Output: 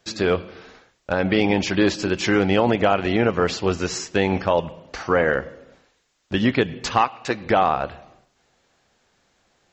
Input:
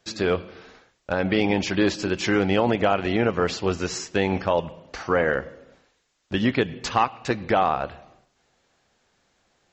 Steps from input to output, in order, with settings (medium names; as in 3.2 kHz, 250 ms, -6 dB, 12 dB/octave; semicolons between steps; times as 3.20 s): 7.01–7.46 s: bass shelf 210 Hz -9.5 dB; trim +2.5 dB